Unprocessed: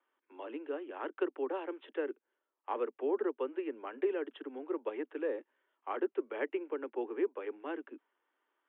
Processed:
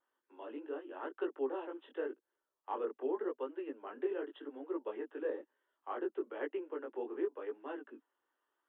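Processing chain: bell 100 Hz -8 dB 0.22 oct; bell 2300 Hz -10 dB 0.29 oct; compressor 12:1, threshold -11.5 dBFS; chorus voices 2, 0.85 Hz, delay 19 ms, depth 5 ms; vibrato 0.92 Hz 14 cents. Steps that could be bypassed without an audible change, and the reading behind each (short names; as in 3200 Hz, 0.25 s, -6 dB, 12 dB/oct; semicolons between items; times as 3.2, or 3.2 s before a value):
bell 100 Hz: input band starts at 210 Hz; compressor, threshold -11.5 dBFS: input peak -19.5 dBFS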